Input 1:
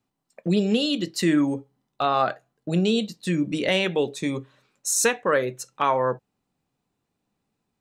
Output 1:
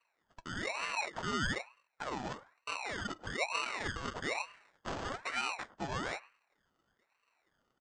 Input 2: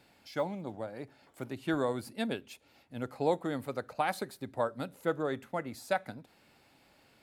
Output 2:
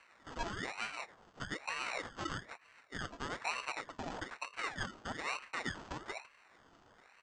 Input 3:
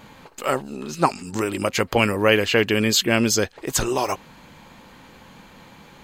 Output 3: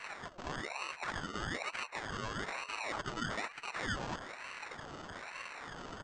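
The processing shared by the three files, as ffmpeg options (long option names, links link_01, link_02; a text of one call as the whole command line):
ffmpeg -i in.wav -filter_complex "[0:a]afftfilt=real='real(if(between(b,1,1008),(2*floor((b-1)/48)+1)*48-b,b),0)':imag='imag(if(between(b,1,1008),(2*floor((b-1)/48)+1)*48-b,b),0)*if(between(b,1,1008),-1,1)':win_size=2048:overlap=0.75,highshelf=frequency=3600:gain=2.5,areverse,acompressor=threshold=-30dB:ratio=12,areverse,alimiter=level_in=6dB:limit=-24dB:level=0:latency=1:release=15,volume=-6dB,flanger=delay=5.2:depth=1.8:regen=23:speed=0.7:shape=triangular,acrusher=samples=27:mix=1:aa=0.000001,asplit=2[link_01][link_02];[link_02]adelay=106,lowpass=frequency=860:poles=1,volume=-18dB,asplit=2[link_03][link_04];[link_04]adelay=106,lowpass=frequency=860:poles=1,volume=0.23[link_05];[link_01][link_03][link_05]amix=inputs=3:normalize=0,aresample=16000,aresample=44100,aeval=exprs='val(0)*sin(2*PI*1200*n/s+1200*0.6/1.1*sin(2*PI*1.1*n/s))':channel_layout=same,volume=6.5dB" out.wav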